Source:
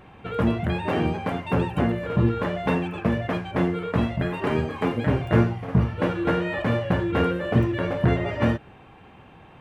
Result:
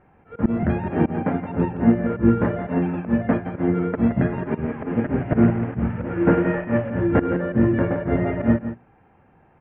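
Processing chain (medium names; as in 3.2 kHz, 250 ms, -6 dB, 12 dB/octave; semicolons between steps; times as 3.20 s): 4.49–7.00 s: one-bit delta coder 16 kbps, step -29.5 dBFS; low-pass 2 kHz 24 dB/octave; band-stop 1.1 kHz, Q 11; dynamic bell 230 Hz, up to +8 dB, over -37 dBFS, Q 1.3; hum notches 60/120/180/240/300/360/420 Hz; slow attack 118 ms; delay 170 ms -7.5 dB; upward expansion 1.5:1, over -40 dBFS; trim +5 dB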